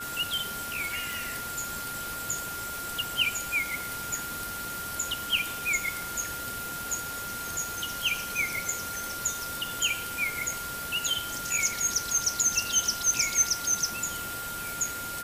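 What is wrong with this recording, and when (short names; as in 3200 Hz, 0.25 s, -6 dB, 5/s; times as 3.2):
tone 1400 Hz -36 dBFS
1.13 pop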